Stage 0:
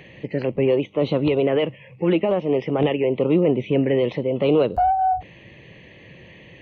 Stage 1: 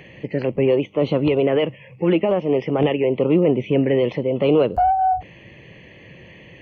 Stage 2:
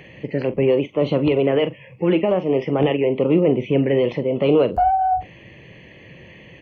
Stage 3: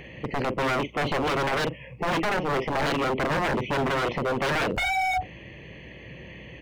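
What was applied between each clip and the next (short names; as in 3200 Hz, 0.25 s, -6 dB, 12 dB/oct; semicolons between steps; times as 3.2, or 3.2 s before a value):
notch 3800 Hz, Q 5.9; gain +1.5 dB
doubler 43 ms -12.5 dB
wavefolder -20 dBFS; hum 60 Hz, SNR 25 dB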